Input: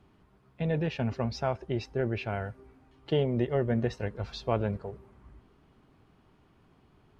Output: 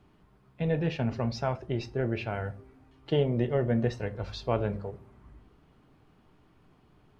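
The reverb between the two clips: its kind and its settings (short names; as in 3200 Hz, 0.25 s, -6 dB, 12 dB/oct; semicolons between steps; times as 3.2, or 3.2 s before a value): shoebox room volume 160 m³, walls furnished, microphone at 0.44 m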